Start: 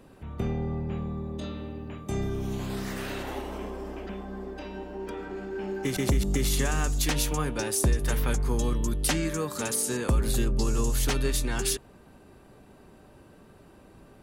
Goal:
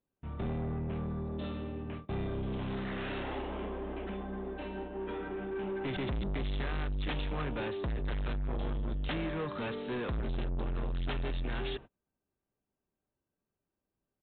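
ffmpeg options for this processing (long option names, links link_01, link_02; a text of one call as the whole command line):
ffmpeg -i in.wav -af "agate=range=-36dB:threshold=-39dB:ratio=16:detection=peak,aresample=8000,asoftclip=type=tanh:threshold=-31.5dB,aresample=44100" out.wav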